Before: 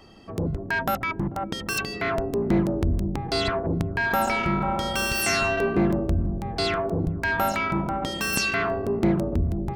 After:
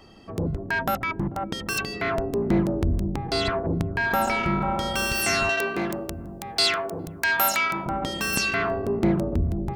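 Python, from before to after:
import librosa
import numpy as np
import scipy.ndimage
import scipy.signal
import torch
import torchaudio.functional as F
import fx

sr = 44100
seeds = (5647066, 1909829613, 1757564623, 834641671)

y = fx.tilt_eq(x, sr, slope=4.0, at=(5.49, 7.86))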